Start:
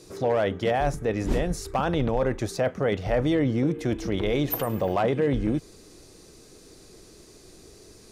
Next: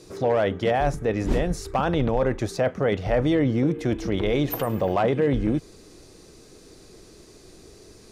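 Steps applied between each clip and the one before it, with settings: high shelf 6800 Hz -5.5 dB; gain +2 dB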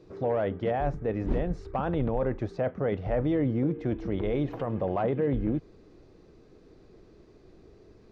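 tape spacing loss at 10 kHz 33 dB; gain -4 dB

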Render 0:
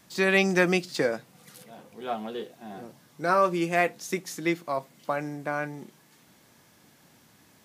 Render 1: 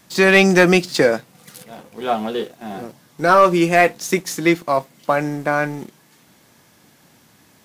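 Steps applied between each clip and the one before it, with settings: sample leveller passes 1; gain +7.5 dB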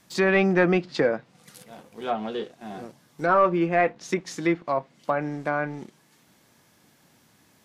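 treble ducked by the level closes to 2000 Hz, closed at -13.5 dBFS; gain -7 dB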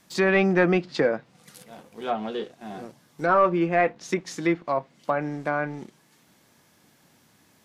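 notches 60/120 Hz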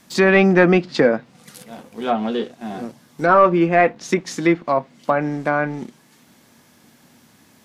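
bell 240 Hz +8 dB 0.22 oct; gain +6.5 dB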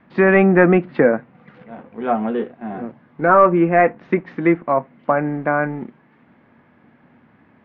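inverse Chebyshev low-pass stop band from 8600 Hz, stop band 70 dB; gain +1 dB

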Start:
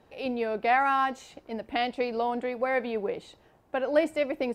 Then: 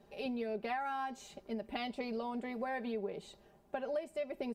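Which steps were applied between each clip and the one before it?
bell 1600 Hz -5.5 dB 2.3 oct; comb 5 ms, depth 72%; compressor 6:1, threshold -32 dBFS, peak gain reduction 15.5 dB; gain -3 dB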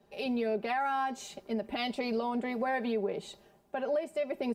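low shelf 75 Hz -10.5 dB; limiter -32 dBFS, peak gain reduction 7.5 dB; three-band expander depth 40%; gain +8.5 dB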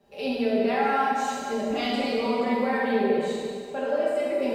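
reverb RT60 2.3 s, pre-delay 7 ms, DRR -7 dB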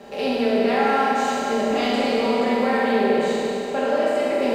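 per-bin compression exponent 0.6; gain +1.5 dB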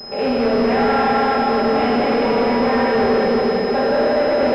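regenerating reverse delay 0.18 s, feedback 68%, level -5.5 dB; sample leveller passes 3; pulse-width modulation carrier 5100 Hz; gain -5 dB

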